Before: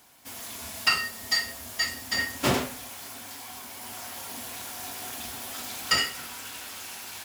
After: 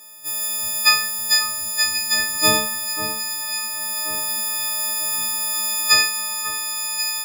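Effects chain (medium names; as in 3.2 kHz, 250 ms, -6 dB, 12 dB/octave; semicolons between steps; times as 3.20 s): partials quantised in pitch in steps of 6 st; echo whose repeats swap between lows and highs 542 ms, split 1.9 kHz, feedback 65%, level -8.5 dB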